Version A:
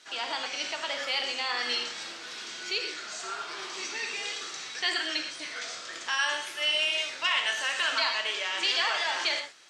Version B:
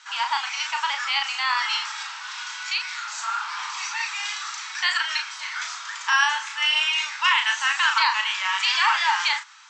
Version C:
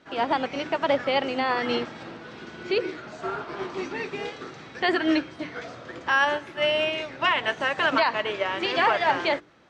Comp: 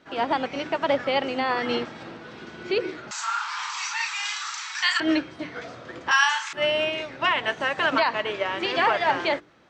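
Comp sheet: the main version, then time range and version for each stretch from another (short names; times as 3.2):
C
3.11–5 from B
6.11–6.53 from B
not used: A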